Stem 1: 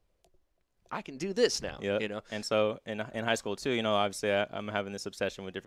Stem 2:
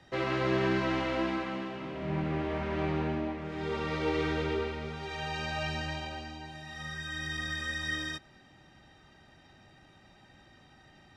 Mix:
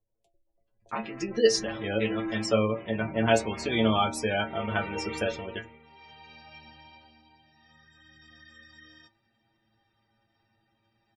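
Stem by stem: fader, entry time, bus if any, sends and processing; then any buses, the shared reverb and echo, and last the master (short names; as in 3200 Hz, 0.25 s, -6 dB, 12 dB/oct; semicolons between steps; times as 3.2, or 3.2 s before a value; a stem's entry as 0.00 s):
+1.0 dB, 0.00 s, no send, dry
1.76 s -14.5 dB -> 2.34 s -6 dB -> 5.16 s -6 dB -> 5.79 s -17 dB, 0.90 s, no send, dry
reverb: off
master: spectral gate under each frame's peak -25 dB strong; metallic resonator 110 Hz, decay 0.23 s, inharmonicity 0.002; AGC gain up to 12 dB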